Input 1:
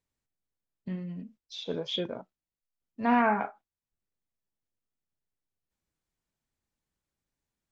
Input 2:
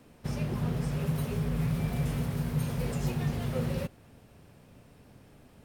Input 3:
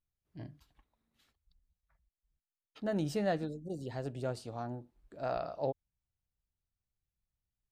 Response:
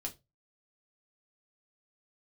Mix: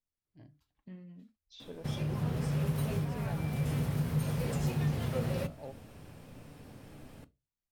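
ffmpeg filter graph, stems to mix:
-filter_complex "[0:a]alimiter=limit=0.0944:level=0:latency=1,volume=0.237,asplit=2[s0][s1];[1:a]adelay=1600,volume=1.12,asplit=2[s2][s3];[s3]volume=0.631[s4];[2:a]volume=0.251,asplit=2[s5][s6];[s6]volume=0.316[s7];[s1]apad=whole_len=319412[s8];[s2][s8]sidechaincompress=threshold=0.00447:ratio=8:attack=16:release=470[s9];[3:a]atrim=start_sample=2205[s10];[s4][s7]amix=inputs=2:normalize=0[s11];[s11][s10]afir=irnorm=-1:irlink=0[s12];[s0][s9][s5][s12]amix=inputs=4:normalize=0,acompressor=threshold=0.0126:ratio=1.5"

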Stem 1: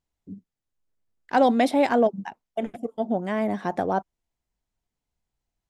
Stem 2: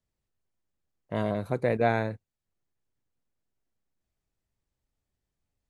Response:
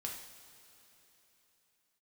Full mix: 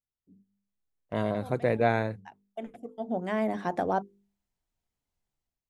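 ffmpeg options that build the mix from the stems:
-filter_complex "[0:a]bandreject=f=50:t=h:w=6,bandreject=f=100:t=h:w=6,bandreject=f=150:t=h:w=6,bandreject=f=200:t=h:w=6,bandreject=f=250:t=h:w=6,bandreject=f=300:t=h:w=6,bandreject=f=350:t=h:w=6,bandreject=f=400:t=h:w=6,bandreject=f=450:t=h:w=6,bandreject=f=500:t=h:w=6,dynaudnorm=f=140:g=5:m=2.11,volume=0.178,afade=t=in:st=2.97:d=0.32:silence=0.446684[s0];[1:a]agate=range=0.316:threshold=0.01:ratio=16:detection=peak,volume=0.501,asplit=2[s1][s2];[s2]apad=whole_len=251180[s3];[s0][s3]sidechaincompress=threshold=0.00316:ratio=10:attack=9.9:release=167[s4];[s4][s1]amix=inputs=2:normalize=0,bandreject=f=50:t=h:w=6,bandreject=f=100:t=h:w=6,bandreject=f=150:t=h:w=6,bandreject=f=200:t=h:w=6,dynaudnorm=f=170:g=5:m=2"

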